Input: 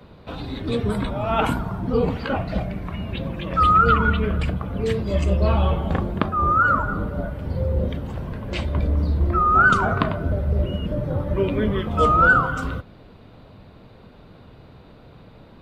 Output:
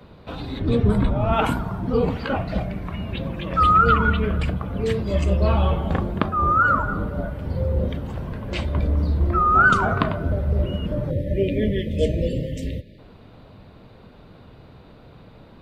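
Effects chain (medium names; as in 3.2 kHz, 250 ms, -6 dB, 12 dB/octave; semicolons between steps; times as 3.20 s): 0.59–1.33 s: tilt EQ -2 dB/octave; 11.10–12.99 s: spectral selection erased 650–1700 Hz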